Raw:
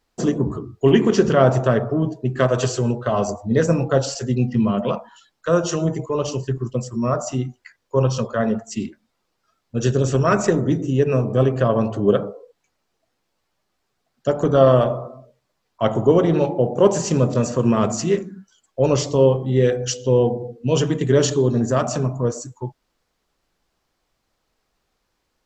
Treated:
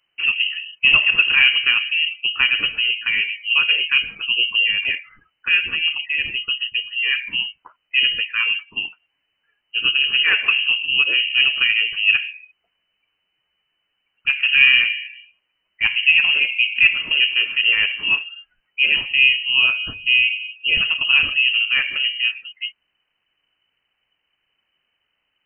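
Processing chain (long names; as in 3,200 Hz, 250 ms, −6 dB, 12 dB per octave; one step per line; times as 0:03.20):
voice inversion scrambler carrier 3,000 Hz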